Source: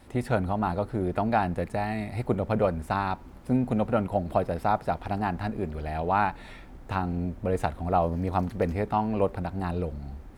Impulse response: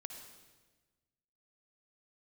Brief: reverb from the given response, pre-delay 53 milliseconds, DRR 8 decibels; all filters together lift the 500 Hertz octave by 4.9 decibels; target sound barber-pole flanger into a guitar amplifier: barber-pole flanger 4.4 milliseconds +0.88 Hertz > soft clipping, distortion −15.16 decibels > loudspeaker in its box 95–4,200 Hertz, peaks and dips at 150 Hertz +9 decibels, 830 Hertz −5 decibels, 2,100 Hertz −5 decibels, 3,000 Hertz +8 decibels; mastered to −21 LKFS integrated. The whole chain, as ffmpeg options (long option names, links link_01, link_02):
-filter_complex "[0:a]equalizer=frequency=500:width_type=o:gain=6.5,asplit=2[link_01][link_02];[1:a]atrim=start_sample=2205,adelay=53[link_03];[link_02][link_03]afir=irnorm=-1:irlink=0,volume=-4.5dB[link_04];[link_01][link_04]amix=inputs=2:normalize=0,asplit=2[link_05][link_06];[link_06]adelay=4.4,afreqshift=0.88[link_07];[link_05][link_07]amix=inputs=2:normalize=1,asoftclip=threshold=-18.5dB,highpass=95,equalizer=frequency=150:width_type=q:width=4:gain=9,equalizer=frequency=830:width_type=q:width=4:gain=-5,equalizer=frequency=2100:width_type=q:width=4:gain=-5,equalizer=frequency=3000:width_type=q:width=4:gain=8,lowpass=frequency=4200:width=0.5412,lowpass=frequency=4200:width=1.3066,volume=9dB"